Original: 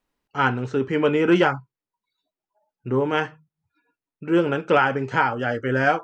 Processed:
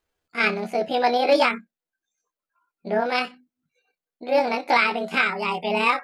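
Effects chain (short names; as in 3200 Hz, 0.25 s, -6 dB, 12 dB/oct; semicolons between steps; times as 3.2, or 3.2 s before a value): delay-line pitch shifter +8.5 st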